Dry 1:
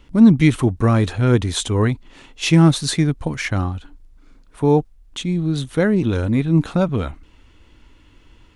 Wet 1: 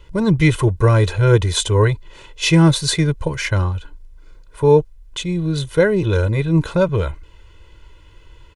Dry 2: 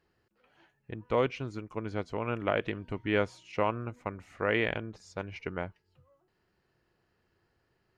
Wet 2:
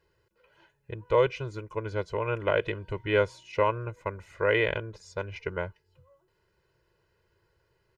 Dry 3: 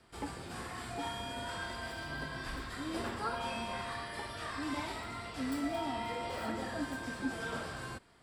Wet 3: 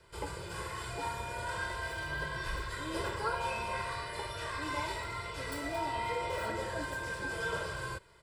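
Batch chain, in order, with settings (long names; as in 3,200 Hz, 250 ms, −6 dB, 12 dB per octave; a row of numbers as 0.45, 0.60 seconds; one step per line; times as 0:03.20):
comb filter 2 ms, depth 100%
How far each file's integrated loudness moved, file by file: +1.0, +3.5, +2.0 LU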